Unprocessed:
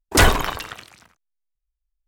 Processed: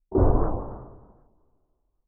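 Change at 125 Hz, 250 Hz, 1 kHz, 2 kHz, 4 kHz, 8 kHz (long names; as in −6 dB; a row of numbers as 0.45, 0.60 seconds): −1.5 dB, −0.5 dB, −9.5 dB, −31.0 dB, below −40 dB, below −40 dB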